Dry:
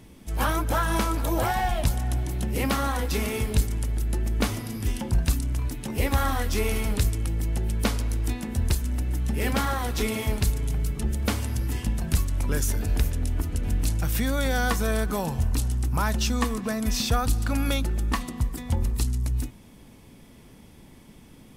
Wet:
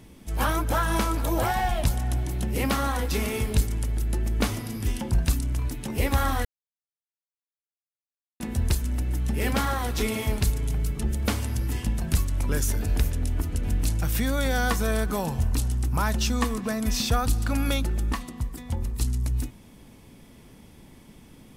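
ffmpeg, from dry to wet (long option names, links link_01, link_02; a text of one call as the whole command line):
ffmpeg -i in.wav -filter_complex "[0:a]asplit=5[link_01][link_02][link_03][link_04][link_05];[link_01]atrim=end=6.45,asetpts=PTS-STARTPTS,afade=type=out:start_time=6.446:duration=0.004:curve=hsin[link_06];[link_02]atrim=start=6.45:end=8.4,asetpts=PTS-STARTPTS,volume=0[link_07];[link_03]atrim=start=8.4:end=18.132,asetpts=PTS-STARTPTS,afade=type=in:duration=0.004:curve=hsin[link_08];[link_04]atrim=start=18.128:end=19.012,asetpts=PTS-STARTPTS,volume=-4dB[link_09];[link_05]atrim=start=19.008[link_10];[link_06][link_07][link_08]concat=n=3:v=0:a=1[link_11];[link_11][link_09]acrossfade=duration=0.004:curve1=hsin:curve2=hsin[link_12];[link_12][link_10]acrossfade=duration=0.004:curve1=hsin:curve2=hsin" out.wav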